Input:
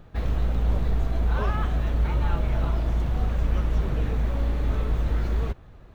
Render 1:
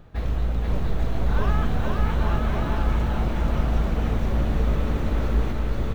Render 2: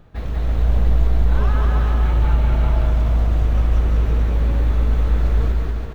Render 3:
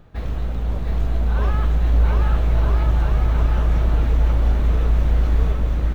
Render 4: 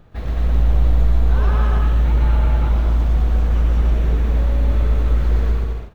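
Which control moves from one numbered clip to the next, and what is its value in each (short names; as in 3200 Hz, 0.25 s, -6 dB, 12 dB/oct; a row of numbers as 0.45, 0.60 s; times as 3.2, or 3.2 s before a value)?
bouncing-ball echo, first gap: 0.48, 0.19, 0.72, 0.12 s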